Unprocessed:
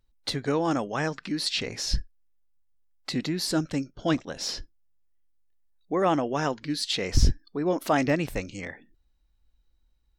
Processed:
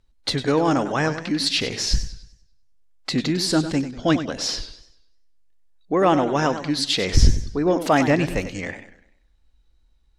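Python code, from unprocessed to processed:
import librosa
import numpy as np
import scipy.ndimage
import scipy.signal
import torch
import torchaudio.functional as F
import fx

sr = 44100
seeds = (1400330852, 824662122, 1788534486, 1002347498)

p1 = scipy.signal.sosfilt(scipy.signal.butter(2, 10000.0, 'lowpass', fs=sr, output='sos'), x)
p2 = 10.0 ** (-22.5 / 20.0) * np.tanh(p1 / 10.0 ** (-22.5 / 20.0))
p3 = p1 + (p2 * librosa.db_to_amplitude(-12.0))
p4 = fx.echo_warbled(p3, sr, ms=98, feedback_pct=41, rate_hz=2.8, cents=151, wet_db=-11)
y = p4 * librosa.db_to_amplitude(4.5)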